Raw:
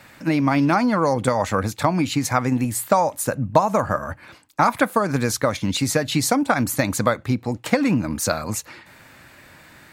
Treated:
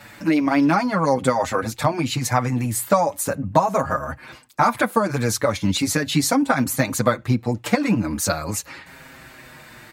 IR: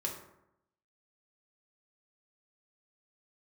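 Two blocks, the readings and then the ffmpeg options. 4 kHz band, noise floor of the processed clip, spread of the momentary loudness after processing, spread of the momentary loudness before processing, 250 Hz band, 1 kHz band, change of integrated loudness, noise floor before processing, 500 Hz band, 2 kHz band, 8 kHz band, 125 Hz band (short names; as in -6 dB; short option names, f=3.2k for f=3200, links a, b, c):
+0.5 dB, -46 dBFS, 7 LU, 7 LU, 0.0 dB, 0.0 dB, 0.0 dB, -49 dBFS, 0.0 dB, 0.0 dB, +0.5 dB, 0.0 dB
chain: -filter_complex "[0:a]asplit=2[a][b];[b]acompressor=threshold=-32dB:ratio=6,volume=-2.5dB[c];[a][c]amix=inputs=2:normalize=0,asplit=2[d][e];[e]adelay=6.4,afreqshift=-0.39[f];[d][f]amix=inputs=2:normalize=1,volume=2dB"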